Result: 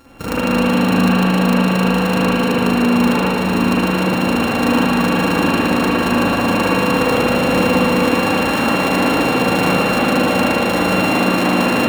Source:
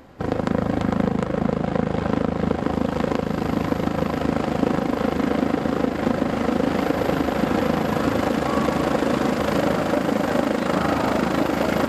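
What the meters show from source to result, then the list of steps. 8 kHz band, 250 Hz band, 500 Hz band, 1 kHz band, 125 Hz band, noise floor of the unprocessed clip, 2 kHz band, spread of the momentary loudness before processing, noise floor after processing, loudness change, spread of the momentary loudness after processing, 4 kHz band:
+11.0 dB, +6.5 dB, +4.5 dB, +7.5 dB, +6.0 dB, -30 dBFS, +11.0 dB, 2 LU, -18 dBFS, +7.0 dB, 2 LU, +12.5 dB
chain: sample sorter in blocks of 32 samples; spring tank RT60 2.6 s, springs 54/58 ms, chirp 70 ms, DRR -9 dB; gain -2.5 dB

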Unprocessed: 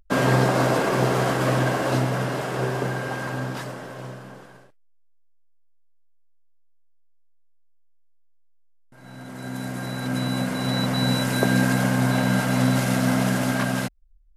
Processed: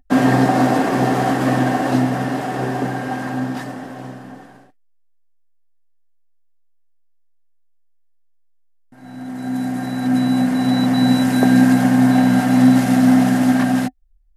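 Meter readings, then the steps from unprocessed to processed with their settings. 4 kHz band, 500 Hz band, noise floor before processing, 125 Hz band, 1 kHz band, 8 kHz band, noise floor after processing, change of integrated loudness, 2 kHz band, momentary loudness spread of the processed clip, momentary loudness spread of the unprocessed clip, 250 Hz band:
0.0 dB, +1.5 dB, -55 dBFS, +1.0 dB, +6.0 dB, 0.0 dB, -55 dBFS, +6.5 dB, +1.5 dB, 14 LU, 14 LU, +10.5 dB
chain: small resonant body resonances 260/750/1800 Hz, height 13 dB, ringing for 55 ms

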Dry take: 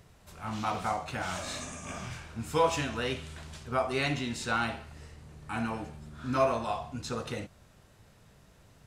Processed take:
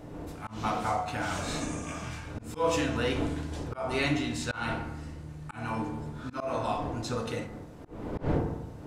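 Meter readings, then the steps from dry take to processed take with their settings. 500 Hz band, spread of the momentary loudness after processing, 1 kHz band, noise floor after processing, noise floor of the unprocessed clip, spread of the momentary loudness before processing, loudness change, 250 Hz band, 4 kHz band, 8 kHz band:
0.0 dB, 13 LU, -0.5 dB, -46 dBFS, -60 dBFS, 16 LU, 0.0 dB, +4.0 dB, 0.0 dB, +0.5 dB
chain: wind noise 420 Hz -40 dBFS; FDN reverb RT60 0.93 s, low-frequency decay 1.45×, high-frequency decay 0.35×, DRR 3.5 dB; auto swell 0.191 s

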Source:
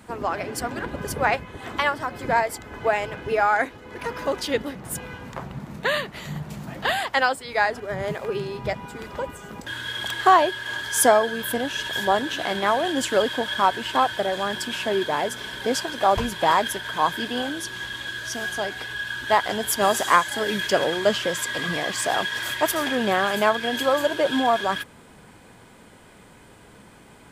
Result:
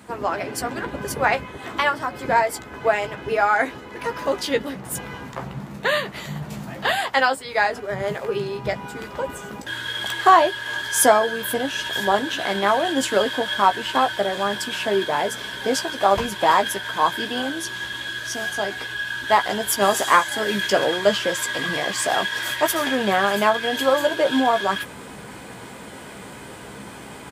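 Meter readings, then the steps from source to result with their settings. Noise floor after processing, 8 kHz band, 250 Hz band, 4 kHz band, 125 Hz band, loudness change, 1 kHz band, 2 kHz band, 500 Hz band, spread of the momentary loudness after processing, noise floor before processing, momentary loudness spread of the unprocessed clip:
-39 dBFS, +2.0 dB, +2.0 dB, +2.0 dB, +0.5 dB, +2.0 dB, +2.0 dB, +2.0 dB, +2.0 dB, 15 LU, -49 dBFS, 12 LU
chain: HPF 110 Hz 6 dB/oct; reverse; upward compressor, threshold -30 dBFS; reverse; doubler 15 ms -7.5 dB; gain +1.5 dB

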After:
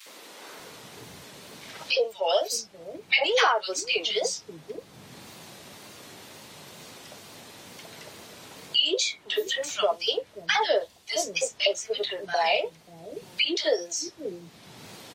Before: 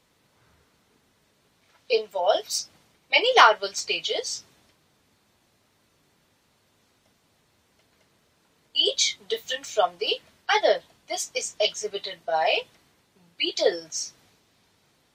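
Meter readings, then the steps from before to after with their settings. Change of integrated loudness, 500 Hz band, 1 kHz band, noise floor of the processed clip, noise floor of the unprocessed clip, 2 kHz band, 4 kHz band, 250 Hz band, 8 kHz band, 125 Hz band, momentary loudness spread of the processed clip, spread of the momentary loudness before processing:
-2.0 dB, -1.5 dB, -5.0 dB, -54 dBFS, -67 dBFS, -1.0 dB, -0.5 dB, +2.5 dB, -1.0 dB, n/a, 21 LU, 13 LU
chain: wow and flutter 92 cents; three bands offset in time highs, mids, lows 60/590 ms, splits 260/1400 Hz; three-band squash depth 70%

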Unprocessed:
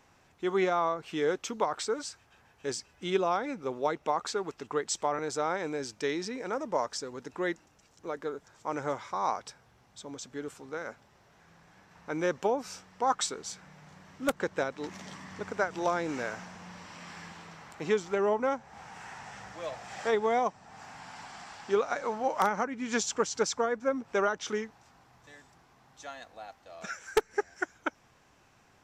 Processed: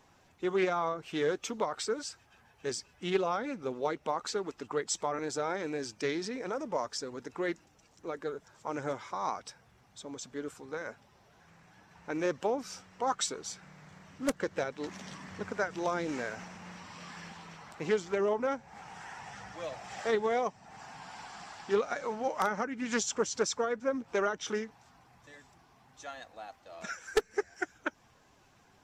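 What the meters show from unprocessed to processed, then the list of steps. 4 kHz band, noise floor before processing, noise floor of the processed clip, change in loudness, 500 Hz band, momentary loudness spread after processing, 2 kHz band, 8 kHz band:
-1.0 dB, -63 dBFS, -64 dBFS, -2.5 dB, -2.0 dB, 15 LU, -2.0 dB, -1.0 dB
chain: bin magnitudes rounded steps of 15 dB; dynamic EQ 900 Hz, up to -4 dB, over -38 dBFS, Q 0.89; Doppler distortion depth 0.15 ms

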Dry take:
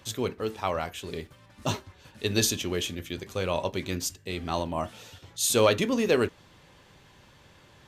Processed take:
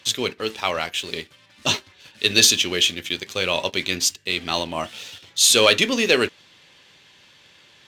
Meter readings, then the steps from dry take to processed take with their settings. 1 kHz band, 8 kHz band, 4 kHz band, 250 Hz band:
+4.0 dB, +10.0 dB, +14.5 dB, +2.0 dB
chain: weighting filter D; sample leveller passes 1

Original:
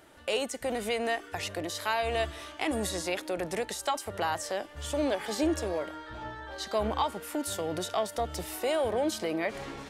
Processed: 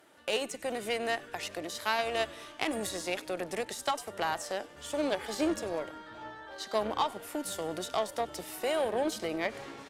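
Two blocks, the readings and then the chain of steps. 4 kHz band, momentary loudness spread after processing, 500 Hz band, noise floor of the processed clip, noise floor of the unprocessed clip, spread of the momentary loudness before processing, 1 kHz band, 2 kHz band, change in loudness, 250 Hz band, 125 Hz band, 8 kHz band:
-1.0 dB, 7 LU, -2.0 dB, -51 dBFS, -48 dBFS, 6 LU, -1.5 dB, -0.5 dB, -1.5 dB, -3.0 dB, -8.5 dB, -2.5 dB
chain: Bessel high-pass 200 Hz, order 2; frequency-shifting echo 97 ms, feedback 55%, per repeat -110 Hz, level -19 dB; added harmonics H 2 -9 dB, 4 -20 dB, 7 -26 dB, 8 -39 dB, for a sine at -14 dBFS

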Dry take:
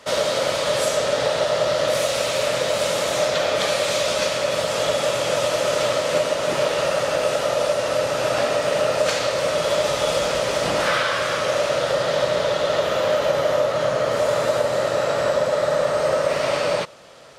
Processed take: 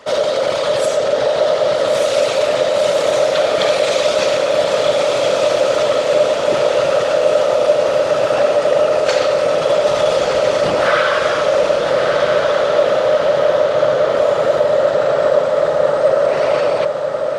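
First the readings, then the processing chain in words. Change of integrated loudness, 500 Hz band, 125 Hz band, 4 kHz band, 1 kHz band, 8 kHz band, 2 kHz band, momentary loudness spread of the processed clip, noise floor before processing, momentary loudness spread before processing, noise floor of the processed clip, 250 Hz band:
+6.0 dB, +7.0 dB, +0.5 dB, +1.5 dB, +4.5 dB, -1.5 dB, +3.0 dB, 2 LU, -25 dBFS, 1 LU, -19 dBFS, +4.0 dB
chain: formant sharpening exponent 1.5; on a send: diffused feedback echo 1.235 s, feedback 56%, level -5 dB; on the sum: gain +5 dB

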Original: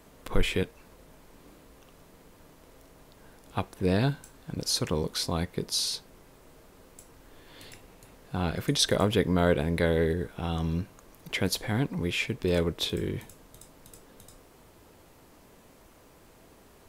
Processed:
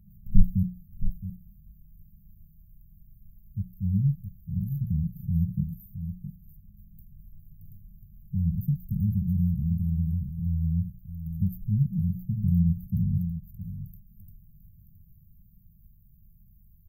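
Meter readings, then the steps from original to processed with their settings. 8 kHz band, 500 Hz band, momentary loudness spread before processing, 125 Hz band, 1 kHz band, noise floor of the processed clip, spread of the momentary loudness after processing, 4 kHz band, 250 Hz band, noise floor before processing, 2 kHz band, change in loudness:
under -40 dB, under -40 dB, 12 LU, +6.0 dB, under -40 dB, -56 dBFS, 13 LU, under -40 dB, +1.5 dB, -56 dBFS, under -40 dB, -0.5 dB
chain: echo 0.668 s -9.5 dB; dynamic EQ 260 Hz, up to +6 dB, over -41 dBFS, Q 1.3; phaser 0.15 Hz, delay 1.1 ms, feedback 62%; brick-wall FIR band-stop 210–13000 Hz; notches 60/120/180 Hz

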